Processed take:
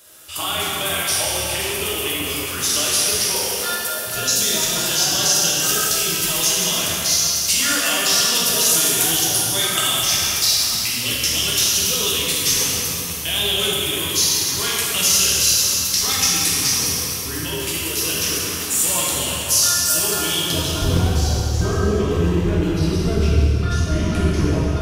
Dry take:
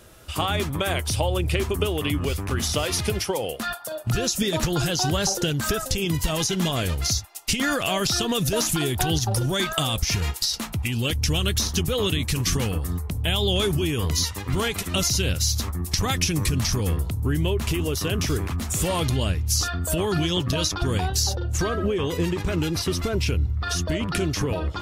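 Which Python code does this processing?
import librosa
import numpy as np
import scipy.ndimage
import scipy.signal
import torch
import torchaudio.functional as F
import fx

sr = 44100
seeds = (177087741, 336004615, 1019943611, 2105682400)

y = fx.tilt_eq(x, sr, slope=fx.steps((0.0, 3.5), (20.52, -1.5)))
y = fx.rev_plate(y, sr, seeds[0], rt60_s=3.2, hf_ratio=0.9, predelay_ms=0, drr_db=-7.0)
y = y * 10.0 ** (-5.5 / 20.0)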